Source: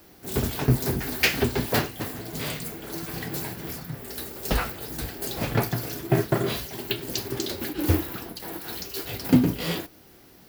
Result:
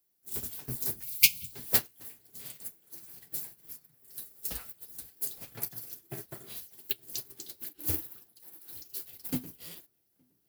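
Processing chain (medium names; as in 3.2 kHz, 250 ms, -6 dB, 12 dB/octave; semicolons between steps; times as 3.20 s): pre-emphasis filter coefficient 0.8; filtered feedback delay 867 ms, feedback 67%, low-pass 1.7 kHz, level -15.5 dB; time-frequency box 1.03–1.53 s, 230–2100 Hz -30 dB; peaking EQ 9.9 kHz +4 dB 0.83 oct; upward expansion 2.5:1, over -40 dBFS; trim +6 dB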